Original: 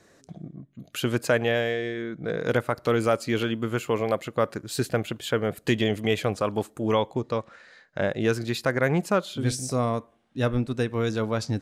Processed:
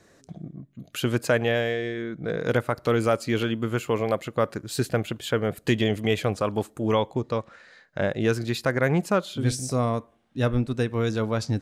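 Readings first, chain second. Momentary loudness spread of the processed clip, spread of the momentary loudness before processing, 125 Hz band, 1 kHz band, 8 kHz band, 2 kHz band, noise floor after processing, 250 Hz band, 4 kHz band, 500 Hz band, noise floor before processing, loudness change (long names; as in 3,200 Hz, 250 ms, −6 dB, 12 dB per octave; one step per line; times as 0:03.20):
8 LU, 8 LU, +2.0 dB, 0.0 dB, 0.0 dB, 0.0 dB, −60 dBFS, +1.0 dB, 0.0 dB, +0.5 dB, −61 dBFS, +0.5 dB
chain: low-shelf EQ 130 Hz +4 dB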